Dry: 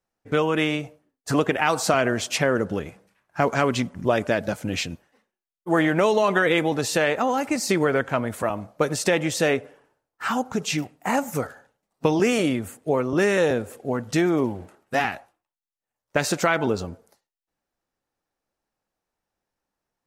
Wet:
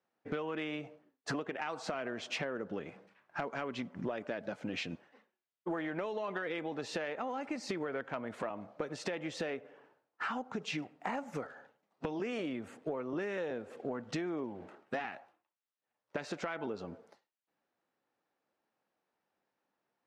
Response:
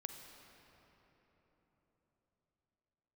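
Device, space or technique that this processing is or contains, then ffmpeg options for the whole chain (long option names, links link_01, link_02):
AM radio: -af "highpass=190,lowpass=3500,acompressor=threshold=-35dB:ratio=10,asoftclip=type=tanh:threshold=-24dB,volume=1dB"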